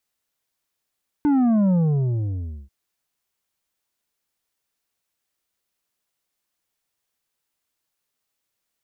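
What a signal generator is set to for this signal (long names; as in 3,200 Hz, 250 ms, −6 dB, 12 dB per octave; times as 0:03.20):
bass drop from 300 Hz, over 1.44 s, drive 7 dB, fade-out 0.98 s, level −16 dB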